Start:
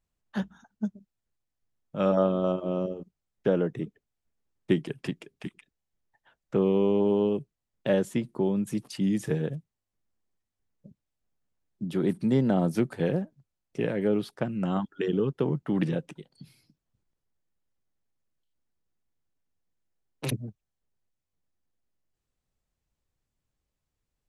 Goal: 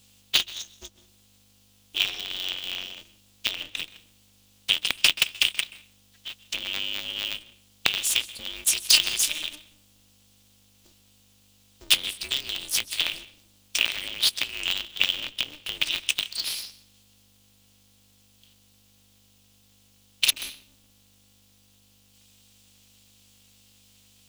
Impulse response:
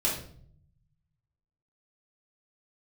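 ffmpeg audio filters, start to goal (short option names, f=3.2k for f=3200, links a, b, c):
-filter_complex "[0:a]acompressor=threshold=-35dB:ratio=6,aexciter=amount=15.6:drive=7.5:freq=2k,asplit=2[a][b];[1:a]atrim=start_sample=2205,adelay=128[c];[b][c]afir=irnorm=-1:irlink=0,volume=-27.5dB[d];[a][d]amix=inputs=2:normalize=0,alimiter=limit=-8dB:level=0:latency=1:release=186,highshelf=f=2k:t=q:w=3:g=13,aeval=exprs='val(0)+0.00282*(sin(2*PI*50*n/s)+sin(2*PI*2*50*n/s)/2+sin(2*PI*3*50*n/s)/3+sin(2*PI*4*50*n/s)/4+sin(2*PI*5*50*n/s)/5)':c=same,aeval=exprs='val(0)*sgn(sin(2*PI*150*n/s))':c=same,volume=-12dB"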